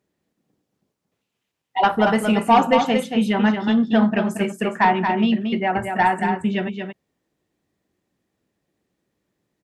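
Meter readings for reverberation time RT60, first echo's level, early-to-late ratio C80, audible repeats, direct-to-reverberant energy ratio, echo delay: no reverb, -6.0 dB, no reverb, 1, no reverb, 229 ms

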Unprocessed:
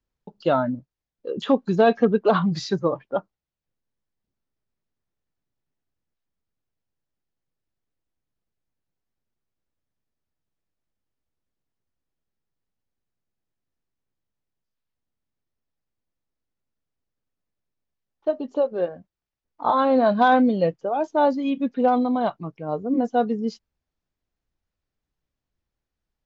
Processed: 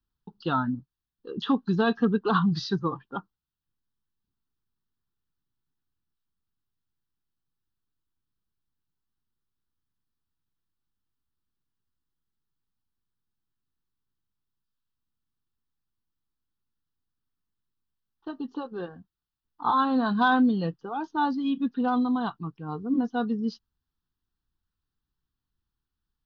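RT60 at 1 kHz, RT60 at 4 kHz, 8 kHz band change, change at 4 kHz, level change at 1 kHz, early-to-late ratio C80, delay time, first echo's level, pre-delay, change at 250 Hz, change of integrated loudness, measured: no reverb, no reverb, no reading, -1.0 dB, -5.0 dB, no reverb, no echo, no echo, no reverb, -2.0 dB, -4.5 dB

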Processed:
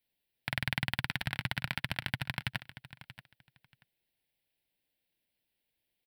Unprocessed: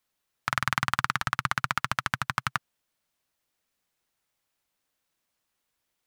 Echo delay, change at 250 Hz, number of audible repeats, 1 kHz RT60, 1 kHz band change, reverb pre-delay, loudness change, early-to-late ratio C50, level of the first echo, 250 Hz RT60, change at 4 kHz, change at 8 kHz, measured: 632 ms, -1.0 dB, 2, no reverb, -15.5 dB, no reverb, -6.5 dB, no reverb, -15.0 dB, no reverb, -2.0 dB, -11.5 dB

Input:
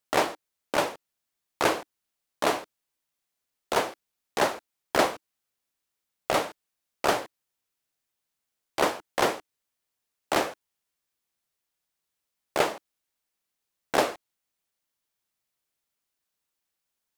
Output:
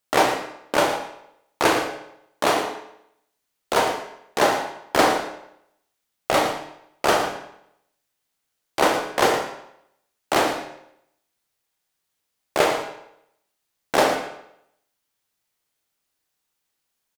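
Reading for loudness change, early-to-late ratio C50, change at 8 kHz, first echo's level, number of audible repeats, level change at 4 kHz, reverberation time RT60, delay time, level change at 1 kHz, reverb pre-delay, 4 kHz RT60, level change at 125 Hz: +5.5 dB, 5.0 dB, +6.0 dB, -11.0 dB, 1, +6.0 dB, 0.75 s, 113 ms, +7.0 dB, 26 ms, 0.65 s, +6.0 dB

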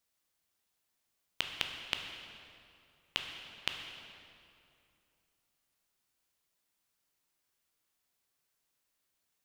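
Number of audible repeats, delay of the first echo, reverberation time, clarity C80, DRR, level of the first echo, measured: no echo, no echo, 2.6 s, 5.5 dB, 3.0 dB, no echo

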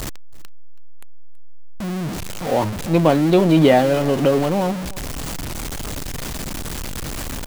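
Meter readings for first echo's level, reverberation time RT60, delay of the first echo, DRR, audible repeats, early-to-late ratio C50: -21.0 dB, no reverb, 327 ms, no reverb, 1, no reverb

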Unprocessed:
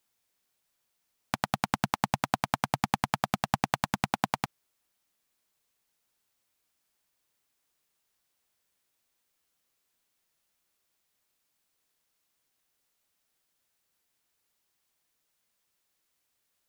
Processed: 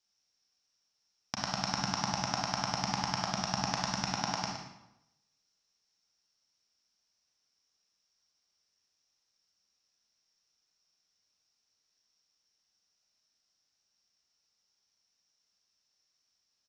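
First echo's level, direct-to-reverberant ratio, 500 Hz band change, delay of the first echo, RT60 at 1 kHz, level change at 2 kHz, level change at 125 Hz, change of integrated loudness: -9.0 dB, -2.0 dB, -4.5 dB, 117 ms, 0.85 s, -4.5 dB, -3.5 dB, -2.0 dB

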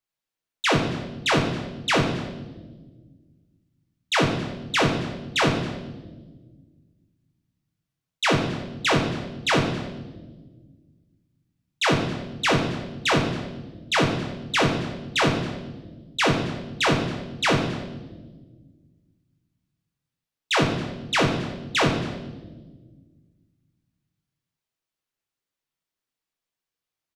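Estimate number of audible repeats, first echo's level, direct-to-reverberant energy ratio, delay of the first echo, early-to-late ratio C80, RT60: 1, -20.0 dB, 1.5 dB, 274 ms, 8.5 dB, 1.4 s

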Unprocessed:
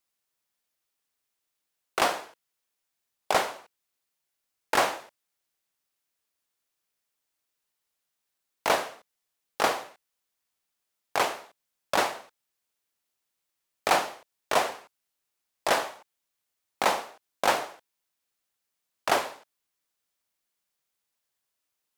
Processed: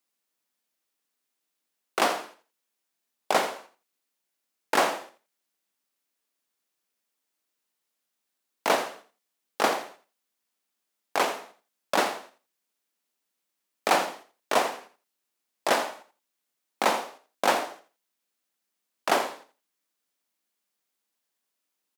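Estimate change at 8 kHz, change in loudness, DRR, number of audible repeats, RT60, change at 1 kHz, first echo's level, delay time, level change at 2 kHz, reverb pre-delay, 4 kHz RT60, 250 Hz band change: 0.0 dB, +0.5 dB, no reverb, 2, no reverb, +0.5 dB, -12.5 dB, 84 ms, +0.5 dB, no reverb, no reverb, +3.5 dB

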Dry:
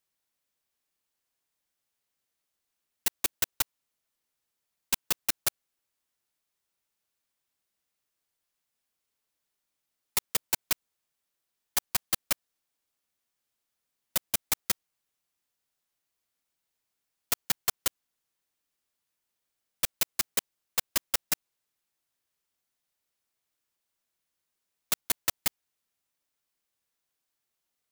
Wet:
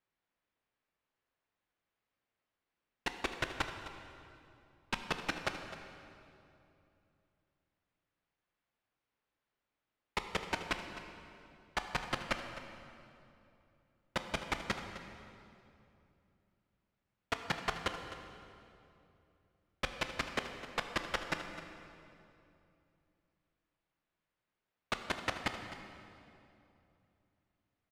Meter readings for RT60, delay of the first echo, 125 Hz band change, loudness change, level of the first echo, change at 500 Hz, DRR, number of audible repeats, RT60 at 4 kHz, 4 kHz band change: 2.8 s, 258 ms, +3.0 dB, -9.5 dB, -14.0 dB, +3.0 dB, 5.5 dB, 1, 2.1 s, -7.0 dB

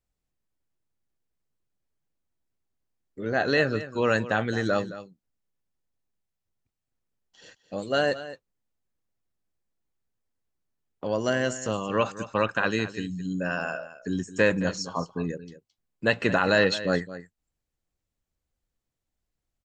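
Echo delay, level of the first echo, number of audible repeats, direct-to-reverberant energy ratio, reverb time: 218 ms, -14.5 dB, 1, no reverb, no reverb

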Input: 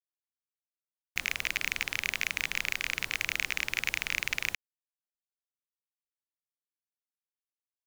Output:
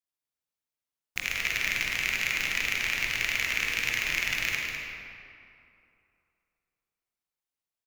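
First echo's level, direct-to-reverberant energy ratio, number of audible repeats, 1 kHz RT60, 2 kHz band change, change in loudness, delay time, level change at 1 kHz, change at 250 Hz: -7.5 dB, -2.5 dB, 1, 2.7 s, +4.0 dB, +3.5 dB, 202 ms, +4.0 dB, +4.5 dB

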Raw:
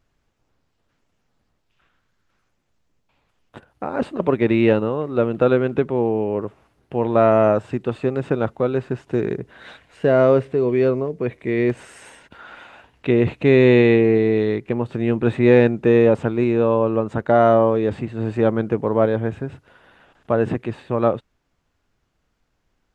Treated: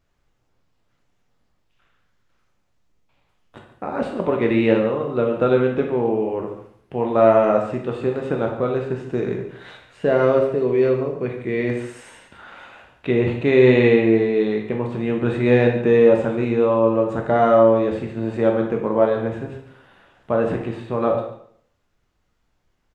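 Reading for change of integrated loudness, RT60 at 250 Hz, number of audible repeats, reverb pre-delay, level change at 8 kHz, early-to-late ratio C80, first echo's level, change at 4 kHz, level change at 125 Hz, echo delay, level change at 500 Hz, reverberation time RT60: -0.5 dB, 0.60 s, 1, 8 ms, no reading, 8.0 dB, -14.0 dB, 0.0 dB, -2.5 dB, 141 ms, 0.0 dB, 0.60 s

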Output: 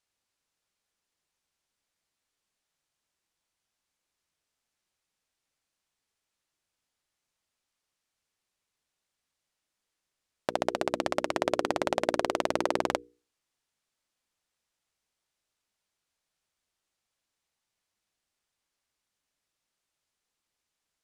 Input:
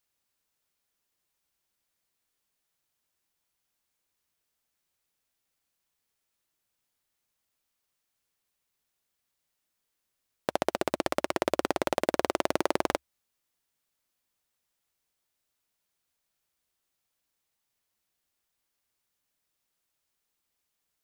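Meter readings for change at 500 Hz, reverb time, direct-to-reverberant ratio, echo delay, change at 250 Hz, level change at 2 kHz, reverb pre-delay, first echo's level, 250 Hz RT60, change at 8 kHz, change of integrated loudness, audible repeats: 0.0 dB, no reverb, no reverb, no echo, -1.0 dB, 0.0 dB, no reverb, no echo, no reverb, -1.5 dB, -0.5 dB, no echo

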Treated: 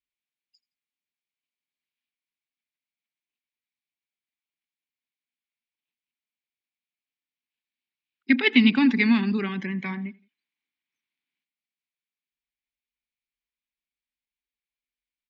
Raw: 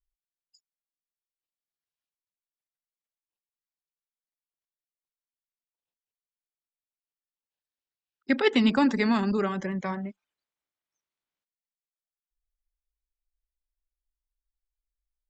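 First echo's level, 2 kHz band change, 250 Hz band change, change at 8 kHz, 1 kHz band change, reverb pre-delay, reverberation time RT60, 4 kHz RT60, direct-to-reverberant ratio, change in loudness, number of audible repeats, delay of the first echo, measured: -22.5 dB, +6.5 dB, +4.0 dB, no reading, -5.0 dB, no reverb, no reverb, no reverb, no reverb, +4.0 dB, 2, 84 ms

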